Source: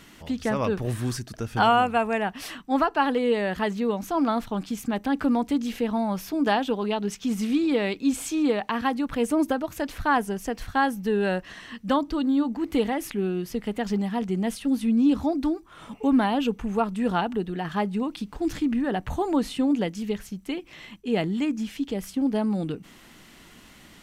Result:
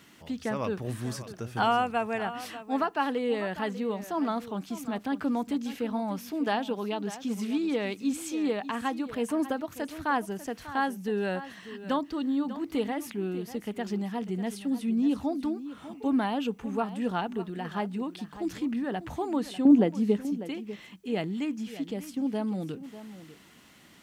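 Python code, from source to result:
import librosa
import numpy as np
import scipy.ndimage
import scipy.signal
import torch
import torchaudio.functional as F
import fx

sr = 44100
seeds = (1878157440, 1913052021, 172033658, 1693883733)

p1 = fx.curve_eq(x, sr, hz=(130.0, 240.0, 4200.0), db=(0, 12, -4), at=(19.65, 20.25))
p2 = fx.quant_dither(p1, sr, seeds[0], bits=12, dither='triangular')
p3 = scipy.signal.sosfilt(scipy.signal.butter(2, 91.0, 'highpass', fs=sr, output='sos'), p2)
p4 = p3 + fx.echo_single(p3, sr, ms=595, db=-14.0, dry=0)
y = p4 * librosa.db_to_amplitude(-5.5)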